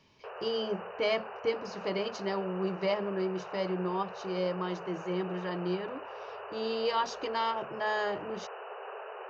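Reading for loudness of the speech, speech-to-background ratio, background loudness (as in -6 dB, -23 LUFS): -33.5 LUFS, 9.5 dB, -43.0 LUFS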